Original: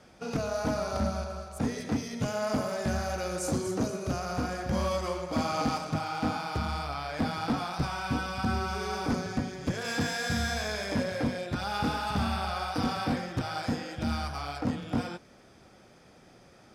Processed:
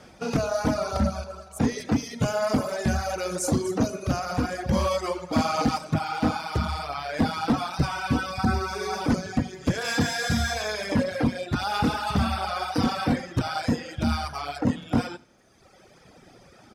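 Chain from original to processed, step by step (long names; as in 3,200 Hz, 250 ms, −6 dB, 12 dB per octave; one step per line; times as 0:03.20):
0:08.33–0:09.01: notch filter 3,000 Hz, Q 6.4
reverb reduction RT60 1.5 s
repeating echo 79 ms, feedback 40%, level −21.5 dB
level +7 dB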